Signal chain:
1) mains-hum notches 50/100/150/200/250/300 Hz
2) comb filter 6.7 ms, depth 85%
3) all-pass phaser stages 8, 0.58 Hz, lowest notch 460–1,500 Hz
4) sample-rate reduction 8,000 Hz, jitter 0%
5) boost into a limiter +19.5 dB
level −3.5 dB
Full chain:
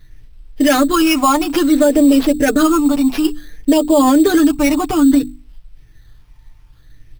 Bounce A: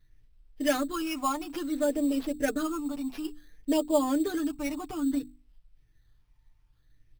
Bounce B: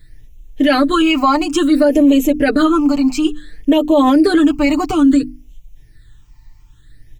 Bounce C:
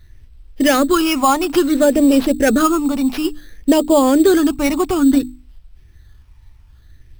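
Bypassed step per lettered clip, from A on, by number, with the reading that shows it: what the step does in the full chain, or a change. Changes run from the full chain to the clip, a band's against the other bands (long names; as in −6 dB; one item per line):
5, change in crest factor +8.5 dB
4, distortion level −10 dB
2, change in crest factor +1.5 dB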